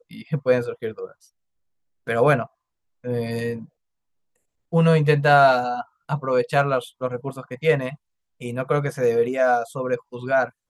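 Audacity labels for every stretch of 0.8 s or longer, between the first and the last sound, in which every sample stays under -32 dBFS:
1.050000	2.070000	silence
3.630000	4.730000	silence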